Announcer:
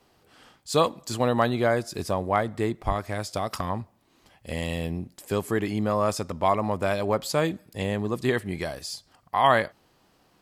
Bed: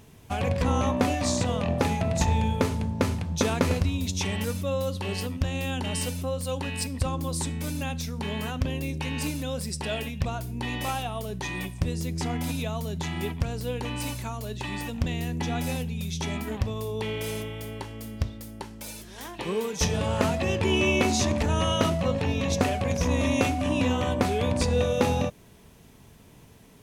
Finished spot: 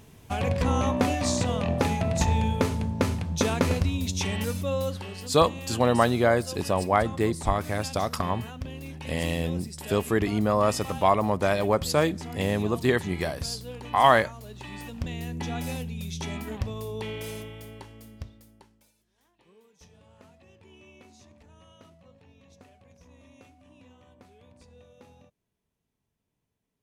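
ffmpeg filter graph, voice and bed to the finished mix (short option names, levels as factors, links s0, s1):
-filter_complex "[0:a]adelay=4600,volume=1.19[s0];[1:a]volume=1.88,afade=t=out:st=4.86:d=0.22:silence=0.375837,afade=t=in:st=14.53:d=0.93:silence=0.530884,afade=t=out:st=16.96:d=1.96:silence=0.0446684[s1];[s0][s1]amix=inputs=2:normalize=0"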